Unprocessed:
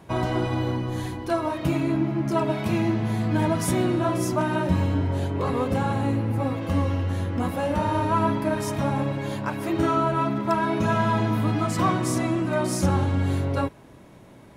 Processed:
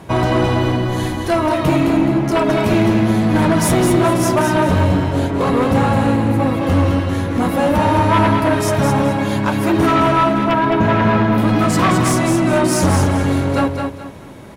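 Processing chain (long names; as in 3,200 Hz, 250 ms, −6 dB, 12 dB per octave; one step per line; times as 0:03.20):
0:10.43–0:11.38: parametric band 8,200 Hz −14 dB 2.1 octaves
sine wavefolder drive 7 dB, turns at −10 dBFS
repeating echo 213 ms, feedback 30%, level −5.5 dB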